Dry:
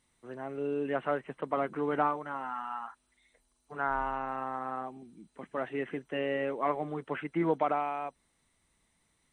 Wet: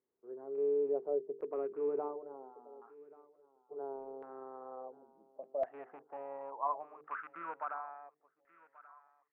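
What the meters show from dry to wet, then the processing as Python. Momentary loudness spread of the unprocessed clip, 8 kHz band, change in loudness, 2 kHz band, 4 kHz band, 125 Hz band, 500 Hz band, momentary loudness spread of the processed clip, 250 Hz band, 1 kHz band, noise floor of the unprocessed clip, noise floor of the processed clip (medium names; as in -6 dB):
13 LU, no reading, -6.0 dB, -14.0 dB, under -25 dB, under -25 dB, -3.0 dB, 21 LU, -15.0 dB, -9.5 dB, -75 dBFS, -80 dBFS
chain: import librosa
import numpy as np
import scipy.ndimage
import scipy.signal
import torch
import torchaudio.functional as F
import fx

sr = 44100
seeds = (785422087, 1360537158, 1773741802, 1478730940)

y = fx.rattle_buzz(x, sr, strikes_db=-42.0, level_db=-25.0)
y = fx.hum_notches(y, sr, base_hz=50, count=9)
y = fx.filter_sweep_bandpass(y, sr, from_hz=410.0, to_hz=1800.0, start_s=4.39, end_s=8.14, q=7.9)
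y = fx.echo_feedback(y, sr, ms=1133, feedback_pct=23, wet_db=-21.0)
y = fx.filter_lfo_lowpass(y, sr, shape='saw_down', hz=0.71, low_hz=540.0, high_hz=1700.0, q=1.8)
y = y * 10.0 ** (3.5 / 20.0)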